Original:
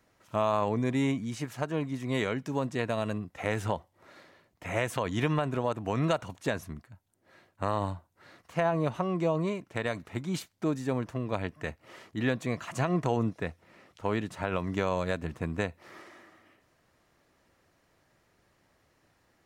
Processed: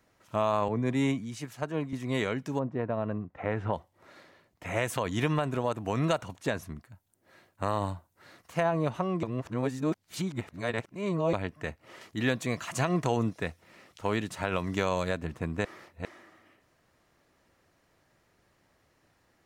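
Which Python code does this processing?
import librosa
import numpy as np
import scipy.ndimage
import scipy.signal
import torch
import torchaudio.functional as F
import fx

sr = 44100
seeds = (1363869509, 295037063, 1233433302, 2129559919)

y = fx.band_widen(x, sr, depth_pct=70, at=(0.68, 1.93))
y = fx.lowpass(y, sr, hz=fx.line((2.58, 1000.0), (3.72, 2000.0)), slope=12, at=(2.58, 3.72), fade=0.02)
y = fx.high_shelf(y, sr, hz=6200.0, db=5.5, at=(4.82, 6.23))
y = fx.high_shelf(y, sr, hz=fx.line((6.82, 9400.0), (8.62, 6100.0)), db=7.5, at=(6.82, 8.62), fade=0.02)
y = fx.high_shelf(y, sr, hz=2700.0, db=7.5, at=(12.01, 15.09))
y = fx.edit(y, sr, fx.reverse_span(start_s=9.23, length_s=2.1),
    fx.reverse_span(start_s=15.65, length_s=0.4), tone=tone)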